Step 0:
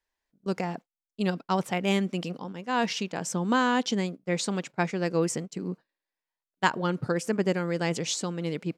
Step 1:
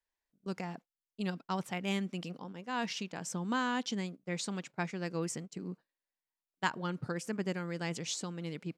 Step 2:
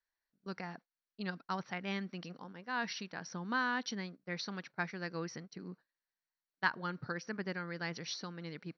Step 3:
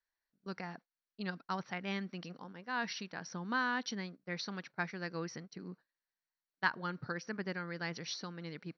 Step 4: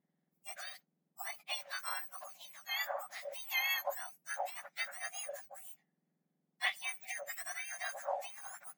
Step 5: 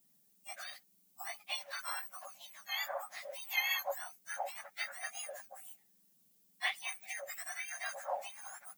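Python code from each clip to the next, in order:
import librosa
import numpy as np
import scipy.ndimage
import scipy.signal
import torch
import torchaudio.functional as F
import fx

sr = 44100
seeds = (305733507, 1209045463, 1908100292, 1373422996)

y1 = fx.dynamic_eq(x, sr, hz=500.0, q=0.98, threshold_db=-37.0, ratio=4.0, max_db=-5)
y1 = y1 * librosa.db_to_amplitude(-7.0)
y2 = scipy.signal.sosfilt(scipy.signal.cheby1(6, 9, 5900.0, 'lowpass', fs=sr, output='sos'), y1)
y2 = y2 * librosa.db_to_amplitude(3.5)
y3 = y2
y4 = fx.octave_mirror(y3, sr, pivot_hz=1800.0)
y4 = y4 * librosa.db_to_amplitude(2.5)
y5 = fx.dmg_noise_colour(y4, sr, seeds[0], colour='violet', level_db=-69.0)
y5 = fx.ensemble(y5, sr)
y5 = y5 * librosa.db_to_amplitude(3.0)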